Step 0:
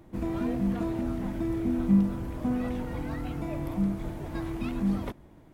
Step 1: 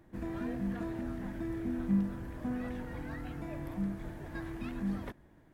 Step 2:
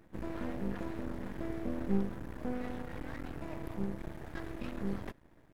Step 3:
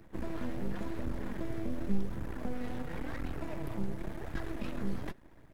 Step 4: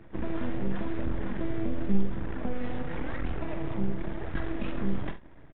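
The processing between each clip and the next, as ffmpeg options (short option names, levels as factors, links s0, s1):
-af "equalizer=f=1700:w=4.4:g=10,volume=0.422"
-af "aeval=exprs='max(val(0),0)':c=same,volume=1.33"
-filter_complex "[0:a]flanger=delay=0.2:depth=9.3:regen=55:speed=0.92:shape=triangular,acrossover=split=150|3000[s0][s1][s2];[s1]acompressor=threshold=0.00562:ratio=6[s3];[s0][s3][s2]amix=inputs=3:normalize=0,volume=2.51"
-filter_complex "[0:a]asplit=2[s0][s1];[s1]aecho=0:1:46|73:0.335|0.158[s2];[s0][s2]amix=inputs=2:normalize=0,aresample=8000,aresample=44100,volume=1.68"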